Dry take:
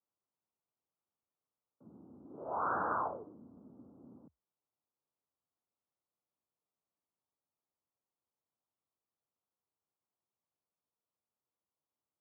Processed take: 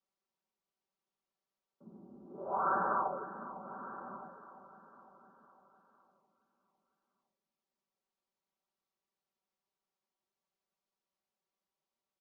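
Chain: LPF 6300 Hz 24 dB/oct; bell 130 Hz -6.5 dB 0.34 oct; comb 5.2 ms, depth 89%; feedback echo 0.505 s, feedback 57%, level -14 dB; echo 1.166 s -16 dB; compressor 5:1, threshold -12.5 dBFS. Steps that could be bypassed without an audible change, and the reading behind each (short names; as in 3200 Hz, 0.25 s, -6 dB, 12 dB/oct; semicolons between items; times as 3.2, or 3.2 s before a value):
LPF 6300 Hz: input band ends at 1800 Hz; compressor, threshold -12.5 dBFS: input peak -20.5 dBFS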